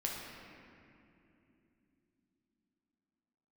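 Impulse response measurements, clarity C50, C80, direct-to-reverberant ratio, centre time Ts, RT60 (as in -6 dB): 0.5 dB, 2.0 dB, -2.5 dB, 0.115 s, 3.0 s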